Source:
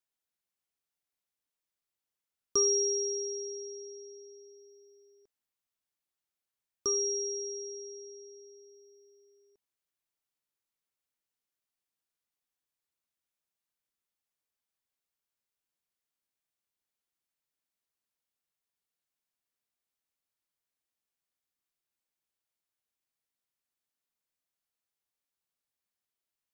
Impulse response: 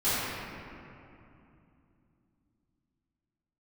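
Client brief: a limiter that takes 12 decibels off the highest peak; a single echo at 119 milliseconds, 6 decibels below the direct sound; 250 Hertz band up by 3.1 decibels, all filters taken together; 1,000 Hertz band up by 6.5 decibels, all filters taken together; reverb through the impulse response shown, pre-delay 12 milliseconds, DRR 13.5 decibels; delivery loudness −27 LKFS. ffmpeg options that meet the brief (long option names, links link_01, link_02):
-filter_complex "[0:a]equalizer=frequency=250:width_type=o:gain=6,equalizer=frequency=1000:width_type=o:gain=8,alimiter=level_in=2.5dB:limit=-24dB:level=0:latency=1,volume=-2.5dB,aecho=1:1:119:0.501,asplit=2[link_01][link_02];[1:a]atrim=start_sample=2205,adelay=12[link_03];[link_02][link_03]afir=irnorm=-1:irlink=0,volume=-27dB[link_04];[link_01][link_04]amix=inputs=2:normalize=0,volume=4.5dB"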